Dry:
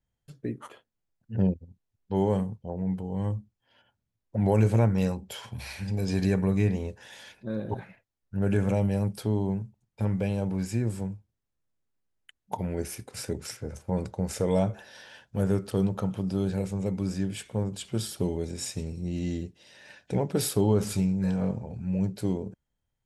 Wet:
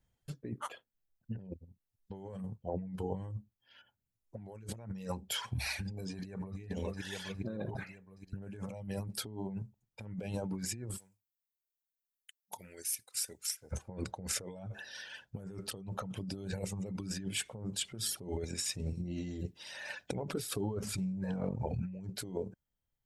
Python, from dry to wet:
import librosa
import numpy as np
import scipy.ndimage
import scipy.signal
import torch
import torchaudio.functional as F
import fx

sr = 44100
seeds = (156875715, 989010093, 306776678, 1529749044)

y = fx.echo_throw(x, sr, start_s=6.11, length_s=0.49, ms=410, feedback_pct=60, wet_db=-12.0)
y = fx.pre_emphasis(y, sr, coefficient=0.97, at=(10.96, 13.71), fade=0.02)
y = fx.over_compress(y, sr, threshold_db=-31.0, ratio=-1.0, at=(19.29, 21.82), fade=0.02)
y = fx.dereverb_blind(y, sr, rt60_s=1.5)
y = fx.over_compress(y, sr, threshold_db=-38.0, ratio=-1.0)
y = y * 10.0 ** (-2.0 / 20.0)